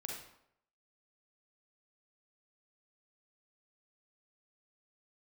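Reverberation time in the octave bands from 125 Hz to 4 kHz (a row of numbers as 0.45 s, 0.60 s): 0.70 s, 0.70 s, 0.75 s, 0.70 s, 0.60 s, 0.55 s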